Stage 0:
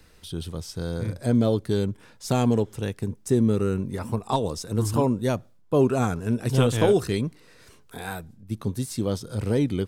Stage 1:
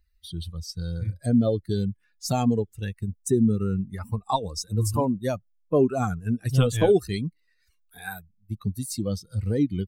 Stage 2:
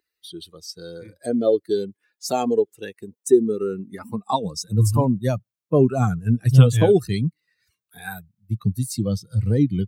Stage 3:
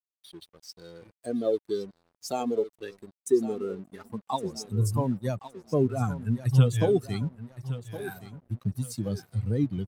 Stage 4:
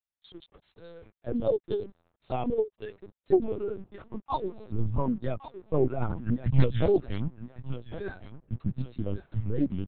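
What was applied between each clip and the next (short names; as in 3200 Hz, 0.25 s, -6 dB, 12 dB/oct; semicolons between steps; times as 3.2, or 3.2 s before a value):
per-bin expansion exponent 2; dynamic EQ 2100 Hz, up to -4 dB, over -47 dBFS, Q 0.97; in parallel at +1 dB: compressor, threshold -34 dBFS, peak gain reduction 15.5 dB; on the sum: gain +1.5 dB
high-pass sweep 380 Hz -> 120 Hz, 3.66–4.85; gain +2 dB
feedback echo 1.115 s, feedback 37%, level -13.5 dB; crossover distortion -46 dBFS; gain -7.5 dB
LPC vocoder at 8 kHz pitch kept; Doppler distortion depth 0.52 ms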